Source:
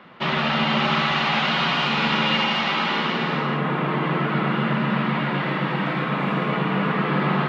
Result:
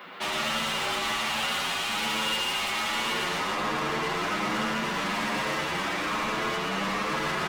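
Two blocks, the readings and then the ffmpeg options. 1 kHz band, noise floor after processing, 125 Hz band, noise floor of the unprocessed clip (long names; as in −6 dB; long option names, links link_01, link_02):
−5.5 dB, −30 dBFS, −15.5 dB, −25 dBFS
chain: -filter_complex "[0:a]highpass=190,aemphasis=mode=production:type=bsi,alimiter=limit=-15.5dB:level=0:latency=1:release=363,asoftclip=type=tanh:threshold=-32dB,asplit=2[link_01][link_02];[link_02]aecho=0:1:118:0.531[link_03];[link_01][link_03]amix=inputs=2:normalize=0,asplit=2[link_04][link_05];[link_05]adelay=8.4,afreqshift=1.2[link_06];[link_04][link_06]amix=inputs=2:normalize=1,volume=7dB"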